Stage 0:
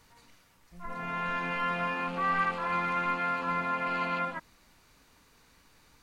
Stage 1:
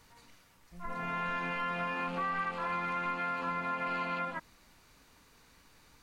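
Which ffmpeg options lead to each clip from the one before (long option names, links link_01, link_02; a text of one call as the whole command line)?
ffmpeg -i in.wav -af "acompressor=threshold=-31dB:ratio=6" out.wav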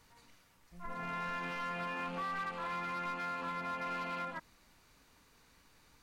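ffmpeg -i in.wav -af "volume=30.5dB,asoftclip=hard,volume=-30.5dB,volume=-3.5dB" out.wav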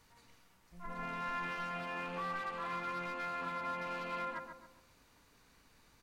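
ffmpeg -i in.wav -filter_complex "[0:a]asplit=2[link_01][link_02];[link_02]adelay=135,lowpass=frequency=1500:poles=1,volume=-5dB,asplit=2[link_03][link_04];[link_04]adelay=135,lowpass=frequency=1500:poles=1,volume=0.46,asplit=2[link_05][link_06];[link_06]adelay=135,lowpass=frequency=1500:poles=1,volume=0.46,asplit=2[link_07][link_08];[link_08]adelay=135,lowpass=frequency=1500:poles=1,volume=0.46,asplit=2[link_09][link_10];[link_10]adelay=135,lowpass=frequency=1500:poles=1,volume=0.46,asplit=2[link_11][link_12];[link_12]adelay=135,lowpass=frequency=1500:poles=1,volume=0.46[link_13];[link_01][link_03][link_05][link_07][link_09][link_11][link_13]amix=inputs=7:normalize=0,volume=-1.5dB" out.wav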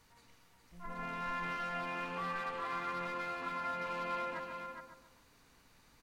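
ffmpeg -i in.wav -af "aecho=1:1:413:0.473" out.wav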